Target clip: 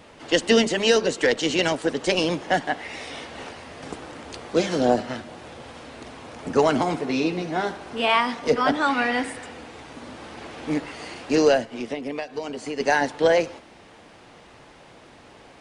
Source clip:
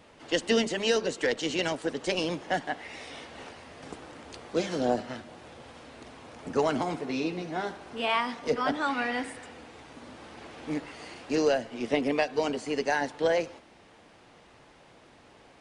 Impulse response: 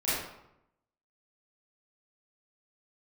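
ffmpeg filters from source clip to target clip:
-filter_complex "[0:a]asplit=3[a][b][c];[a]afade=t=out:st=11.64:d=0.02[d];[b]acompressor=threshold=-35dB:ratio=5,afade=t=in:st=11.64:d=0.02,afade=t=out:st=12.79:d=0.02[e];[c]afade=t=in:st=12.79:d=0.02[f];[d][e][f]amix=inputs=3:normalize=0,volume=7dB"

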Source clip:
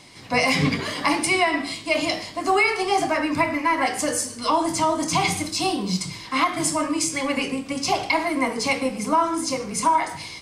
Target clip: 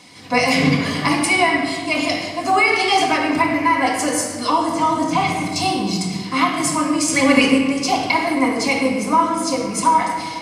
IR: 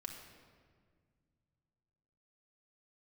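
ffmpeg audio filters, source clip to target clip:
-filter_complex "[0:a]asettb=1/sr,asplit=3[a][b][c];[a]atrim=end=2.734[d];[b]atrim=start=2.73:end=3.18,asetpts=PTS-STARTPTS,afade=t=in:d=0.004:c=qsin,afade=t=out:st=0.446:d=0.004:c=qsin,equalizer=f=3.5k:w=0.81:g=8[e];[c]atrim=start=3.176[f];[d][e]acrossfade=d=0.004:c1=hsin:c2=qsin[g];[g][f]acrossfade=d=0.004:c1=qsin:c2=hsin,asettb=1/sr,asplit=3[h][i][j];[h]atrim=end=4.524[k];[i]atrim=start=4.52:end=5.56,asetpts=PTS-STARTPTS,afade=t=in:d=0.004:c=qsin,afade=t=out:st=1.036:d=0.004:c=qsin,acrossover=split=2900[l][m];[m]acompressor=threshold=-37dB:ratio=4:attack=1:release=60[n];[l][n]amix=inputs=2:normalize=0[o];[j]atrim=start=5.556[p];[k][o]acrossfade=d=0.004:c1=hsin:c2=qsin[q];[q][p]acrossfade=d=0.004:c1=qsin:c2=hsin,highpass=78,asettb=1/sr,asplit=3[r][s][t];[r]atrim=end=7.084[u];[s]atrim=start=7.08:end=7.58,asetpts=PTS-STARTPTS,afade=t=in:d=0.004:c=qsin,afade=t=out:st=0.496:d=0.004:c=qsin,acontrast=63[v];[t]atrim=start=7.576[w];[u][v]acrossfade=d=0.004:c1=hsin:c2=qsin[x];[x][w]acrossfade=d=0.004:c1=qsin:c2=hsin[y];[1:a]atrim=start_sample=2205[z];[y][z]afir=irnorm=-1:irlink=0,volume=6.5dB"

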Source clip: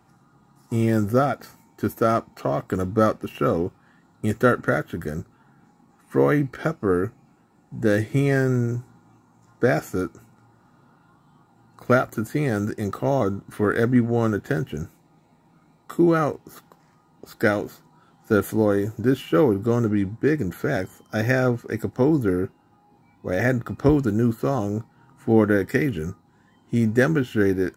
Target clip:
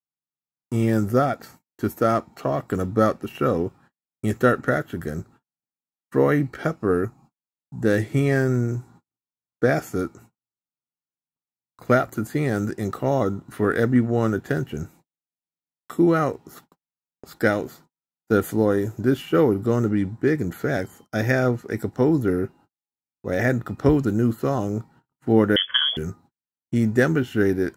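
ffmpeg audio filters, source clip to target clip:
-filter_complex "[0:a]agate=range=-50dB:threshold=-48dB:ratio=16:detection=peak,asettb=1/sr,asplit=3[a][b][c];[a]atrim=end=7.054[d];[b]atrim=start=7.05:end=7.83,asetpts=PTS-STARTPTS,afade=t=in:d=0.004:c=qsin,afade=t=out:st=0.776:d=0.004:c=qsin,equalizer=f=500:t=o:w=1:g=-7,equalizer=f=1k:t=o:w=1:g=7,equalizer=f=2k:t=o:w=1:g=-10[e];[c]atrim=start=7.826[f];[d][e]acrossfade=d=0.004:c1=hsin:c2=qsin[g];[g][f]acrossfade=d=0.004:c1=qsin:c2=hsin,asettb=1/sr,asplit=3[h][i][j];[h]atrim=end=25.564[k];[i]atrim=start=25.56:end=25.97,asetpts=PTS-STARTPTS,afade=t=in:d=0.004:c=qsin,afade=t=out:st=0.406:d=0.004:c=qsin,lowpass=f=3k:t=q:w=0.5098,lowpass=f=3k:t=q:w=0.6013,lowpass=f=3k:t=q:w=0.9,lowpass=f=3k:t=q:w=2.563,afreqshift=-3500[l];[j]atrim=start=25.966[m];[k][l]acrossfade=d=0.004:c1=hsin:c2=qsin[n];[n][m]acrossfade=d=0.004:c1=qsin:c2=hsin"

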